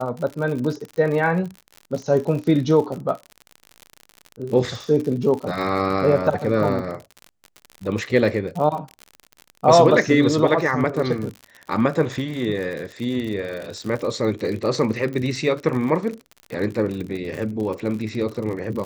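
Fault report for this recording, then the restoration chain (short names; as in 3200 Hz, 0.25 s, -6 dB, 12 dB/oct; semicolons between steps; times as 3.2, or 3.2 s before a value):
crackle 58/s -28 dBFS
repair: de-click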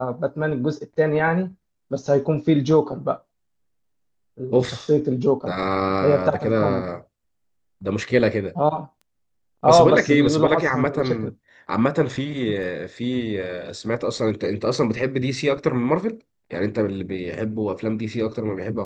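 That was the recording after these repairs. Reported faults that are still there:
none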